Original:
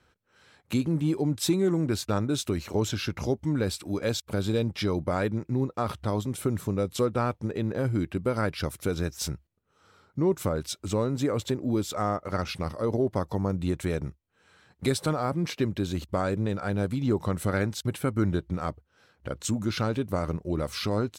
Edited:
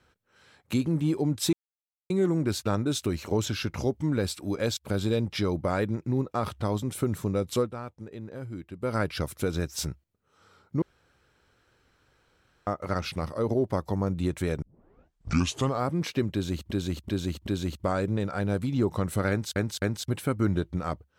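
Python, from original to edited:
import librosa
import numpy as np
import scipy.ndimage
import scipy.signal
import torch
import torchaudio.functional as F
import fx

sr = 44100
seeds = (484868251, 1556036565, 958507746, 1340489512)

y = fx.edit(x, sr, fx.insert_silence(at_s=1.53, length_s=0.57),
    fx.fade_down_up(start_s=7.0, length_s=1.38, db=-11.0, fade_s=0.15, curve='qsin'),
    fx.room_tone_fill(start_s=10.25, length_s=1.85),
    fx.tape_start(start_s=14.05, length_s=1.2),
    fx.repeat(start_s=15.76, length_s=0.38, count=4),
    fx.repeat(start_s=17.59, length_s=0.26, count=3), tone=tone)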